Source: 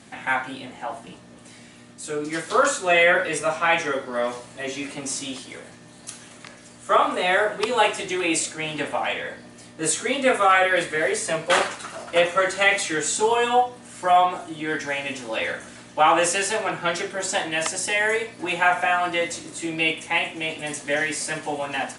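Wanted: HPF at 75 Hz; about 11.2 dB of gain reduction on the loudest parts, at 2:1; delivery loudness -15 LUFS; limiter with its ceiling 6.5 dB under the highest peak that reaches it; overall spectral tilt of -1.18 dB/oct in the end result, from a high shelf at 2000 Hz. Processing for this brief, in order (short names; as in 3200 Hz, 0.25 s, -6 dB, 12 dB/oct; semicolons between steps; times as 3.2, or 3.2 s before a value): HPF 75 Hz; high shelf 2000 Hz +8 dB; compressor 2:1, threshold -32 dBFS; gain +14.5 dB; limiter -4.5 dBFS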